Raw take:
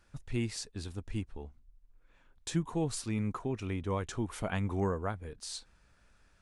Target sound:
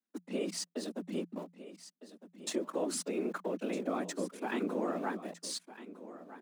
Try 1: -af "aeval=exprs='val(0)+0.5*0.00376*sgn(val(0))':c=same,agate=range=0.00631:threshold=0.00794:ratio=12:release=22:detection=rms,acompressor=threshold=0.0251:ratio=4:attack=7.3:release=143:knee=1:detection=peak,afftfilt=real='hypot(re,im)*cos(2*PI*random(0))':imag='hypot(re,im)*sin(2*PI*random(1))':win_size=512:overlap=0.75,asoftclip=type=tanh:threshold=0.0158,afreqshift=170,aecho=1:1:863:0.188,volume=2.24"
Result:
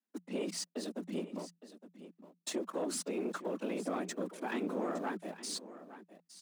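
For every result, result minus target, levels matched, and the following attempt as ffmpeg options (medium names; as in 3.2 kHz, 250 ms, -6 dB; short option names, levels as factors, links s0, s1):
saturation: distortion +16 dB; echo 394 ms early
-af "aeval=exprs='val(0)+0.5*0.00376*sgn(val(0))':c=same,agate=range=0.00631:threshold=0.00794:ratio=12:release=22:detection=rms,acompressor=threshold=0.0251:ratio=4:attack=7.3:release=143:knee=1:detection=peak,afftfilt=real='hypot(re,im)*cos(2*PI*random(0))':imag='hypot(re,im)*sin(2*PI*random(1))':win_size=512:overlap=0.75,asoftclip=type=tanh:threshold=0.0501,afreqshift=170,aecho=1:1:863:0.188,volume=2.24"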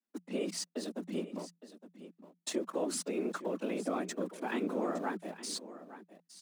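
echo 394 ms early
-af "aeval=exprs='val(0)+0.5*0.00376*sgn(val(0))':c=same,agate=range=0.00631:threshold=0.00794:ratio=12:release=22:detection=rms,acompressor=threshold=0.0251:ratio=4:attack=7.3:release=143:knee=1:detection=peak,afftfilt=real='hypot(re,im)*cos(2*PI*random(0))':imag='hypot(re,im)*sin(2*PI*random(1))':win_size=512:overlap=0.75,asoftclip=type=tanh:threshold=0.0501,afreqshift=170,aecho=1:1:1257:0.188,volume=2.24"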